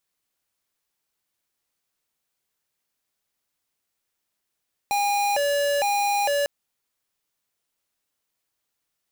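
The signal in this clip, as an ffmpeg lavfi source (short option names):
-f lavfi -i "aevalsrc='0.075*(2*lt(mod((692.5*t+120.5/1.1*(0.5-abs(mod(1.1*t,1)-0.5))),1),0.5)-1)':d=1.55:s=44100"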